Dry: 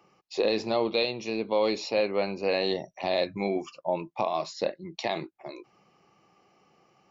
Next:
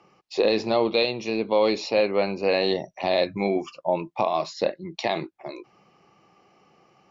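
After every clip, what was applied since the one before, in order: Bessel low-pass 6300 Hz; gain +4.5 dB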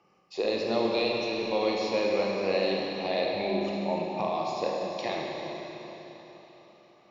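Schroeder reverb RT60 3.8 s, combs from 31 ms, DRR -2 dB; gain -8 dB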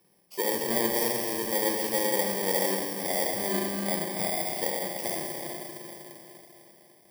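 FFT order left unsorted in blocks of 32 samples

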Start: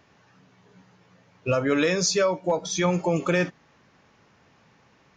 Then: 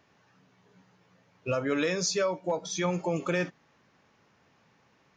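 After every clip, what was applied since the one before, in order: low shelf 64 Hz -7.5 dB; gain -5.5 dB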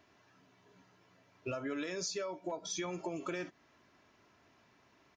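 comb 3 ms, depth 49%; compressor 6:1, threshold -34 dBFS, peak gain reduction 11 dB; gain -2 dB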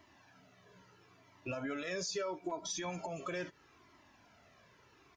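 limiter -33 dBFS, peak gain reduction 6.5 dB; cascading flanger falling 0.76 Hz; gain +7.5 dB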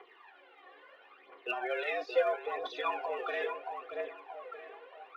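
tape echo 0.627 s, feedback 55%, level -6.5 dB, low-pass 2400 Hz; mistuned SSB +110 Hz 250–3300 Hz; phaser 0.75 Hz, delay 2.8 ms, feedback 64%; gain +5 dB

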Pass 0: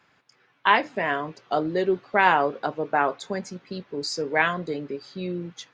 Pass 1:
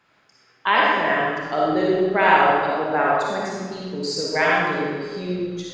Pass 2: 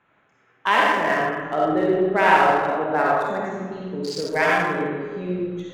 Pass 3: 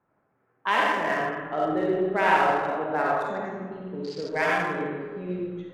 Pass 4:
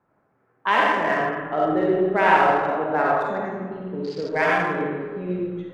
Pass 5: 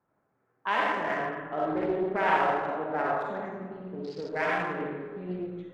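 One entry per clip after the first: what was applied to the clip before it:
digital reverb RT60 1.5 s, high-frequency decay 0.9×, pre-delay 15 ms, DRR -5 dB; gain -1.5 dB
Wiener smoothing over 9 samples
low-pass opened by the level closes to 950 Hz, open at -17.5 dBFS; gain -5 dB
high shelf 5000 Hz -9.5 dB; gain +4.5 dB
Doppler distortion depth 0.28 ms; gain -8 dB

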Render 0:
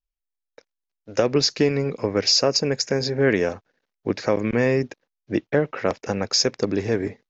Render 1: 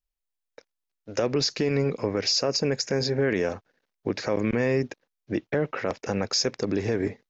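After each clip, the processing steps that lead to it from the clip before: limiter -15 dBFS, peak gain reduction 8 dB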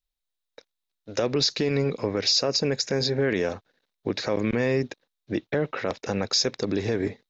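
bell 3800 Hz +10 dB 0.37 oct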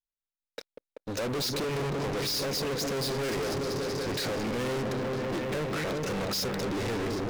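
repeats that get brighter 0.192 s, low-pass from 400 Hz, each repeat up 1 oct, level -6 dB; soft clip -22 dBFS, distortion -11 dB; sample leveller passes 5; gain -7 dB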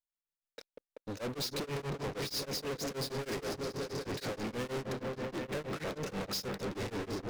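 beating tremolo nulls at 6.3 Hz; gain -4 dB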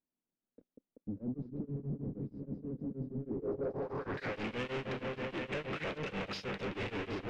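switching spikes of -41.5 dBFS; low-pass sweep 240 Hz -> 2700 Hz, 3.24–4.39; soft clip -27 dBFS, distortion -23 dB; gain -1 dB

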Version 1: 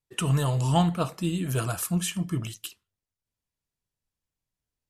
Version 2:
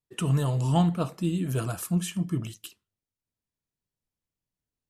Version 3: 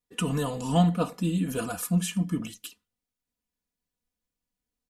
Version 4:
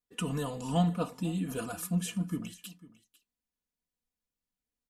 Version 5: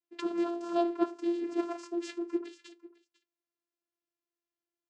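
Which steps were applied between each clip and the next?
bell 240 Hz +6.5 dB 2.4 oct; gain -5 dB
comb 4.1 ms, depth 82%
echo 0.499 s -19.5 dB; gain -5.5 dB
vocoder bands 8, saw 343 Hz

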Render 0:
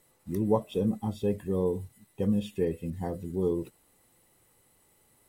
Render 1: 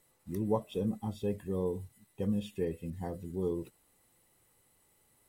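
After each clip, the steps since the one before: bell 330 Hz -2 dB 2.9 oct; gain -3.5 dB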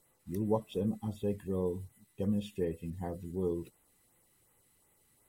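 LFO notch sine 2.7 Hz 540–5500 Hz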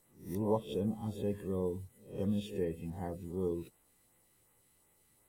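spectral swells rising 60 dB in 0.40 s; gain -2 dB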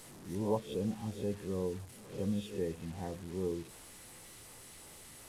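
delta modulation 64 kbps, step -45 dBFS; gain -1 dB

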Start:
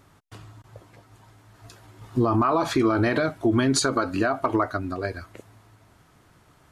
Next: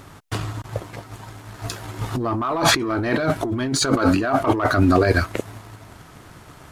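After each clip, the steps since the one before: sample leveller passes 1; negative-ratio compressor -28 dBFS, ratio -1; gain +8 dB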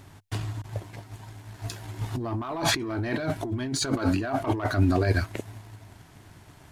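thirty-one-band EQ 100 Hz +6 dB, 500 Hz -6 dB, 1250 Hz -8 dB; gain -7 dB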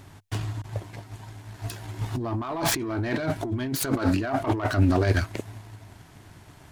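self-modulated delay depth 0.18 ms; gain +1.5 dB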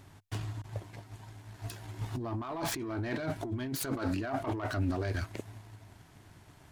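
limiter -16.5 dBFS, peak gain reduction 7 dB; gain -7 dB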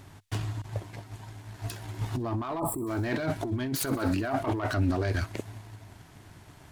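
thin delay 63 ms, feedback 78%, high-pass 3400 Hz, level -21 dB; spectral gain 2.59–2.87, 1300–7500 Hz -28 dB; gain +5 dB

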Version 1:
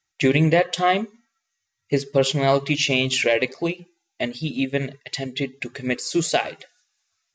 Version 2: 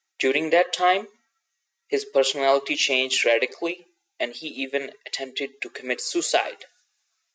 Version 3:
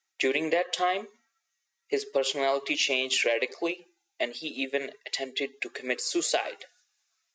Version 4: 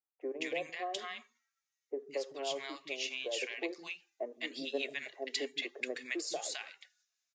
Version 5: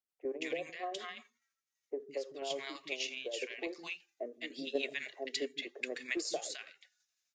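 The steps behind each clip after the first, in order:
HPF 350 Hz 24 dB/oct
compressor, threshold -20 dBFS, peak gain reduction 7 dB; gain -2 dB
vocal rider 0.5 s; three bands offset in time mids, lows, highs 0.16/0.21 s, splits 230/1000 Hz; gain -8.5 dB
tremolo saw down 12 Hz, depth 40%; rotary speaker horn 5.5 Hz, later 0.9 Hz, at 1.07; gain +3.5 dB

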